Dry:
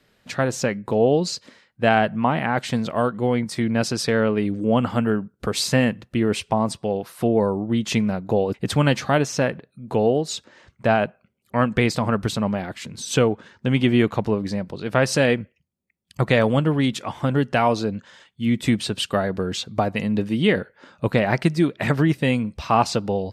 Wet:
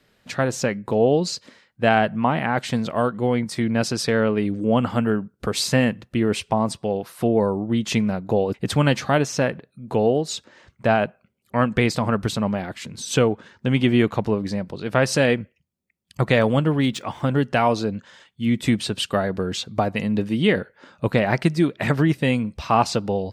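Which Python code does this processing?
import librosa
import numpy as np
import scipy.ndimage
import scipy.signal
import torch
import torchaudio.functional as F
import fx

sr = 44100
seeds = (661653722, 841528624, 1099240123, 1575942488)

y = fx.median_filter(x, sr, points=3, at=(16.34, 17.4))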